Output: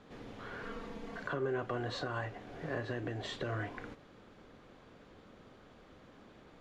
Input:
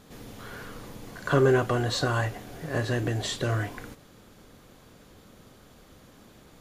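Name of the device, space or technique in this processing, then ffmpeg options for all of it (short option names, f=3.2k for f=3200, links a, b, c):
DJ mixer with the lows and highs turned down: -filter_complex "[0:a]bass=f=250:g=14,treble=f=4k:g=-12,asettb=1/sr,asplit=3[a][b][c];[a]atrim=end=0.634[d];[b]atrim=start=0.63:end=1.23,asetpts=PTS-STARTPTS,afade=t=in:d=0.004:c=qsin,afade=t=out:st=0.596:d=0.004:c=qsin,aecho=1:1:4.4:0.77,atrim=end_sample=26460[e];[c]atrim=start=1.226[f];[d][e]acrossfade=d=0.004:c1=hsin:c2=qsin[g];[g][f]acrossfade=d=0.004:c1=qsin:c2=hsin,acrossover=split=310 7900:gain=0.112 1 0.112[h][i][j];[h][i][j]amix=inputs=3:normalize=0,alimiter=limit=-23.5dB:level=0:latency=1:release=437,volume=-2.5dB"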